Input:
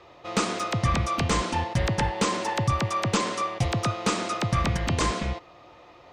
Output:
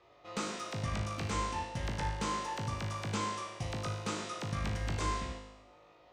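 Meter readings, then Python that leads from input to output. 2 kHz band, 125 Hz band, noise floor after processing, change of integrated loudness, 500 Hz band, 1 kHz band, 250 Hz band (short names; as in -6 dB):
-10.5 dB, -10.0 dB, -61 dBFS, -10.5 dB, -12.0 dB, -10.0 dB, -11.5 dB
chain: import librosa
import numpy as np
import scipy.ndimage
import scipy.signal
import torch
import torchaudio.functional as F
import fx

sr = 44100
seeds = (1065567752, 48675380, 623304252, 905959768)

y = fx.comb_fb(x, sr, f0_hz=52.0, decay_s=0.99, harmonics='all', damping=0.0, mix_pct=90)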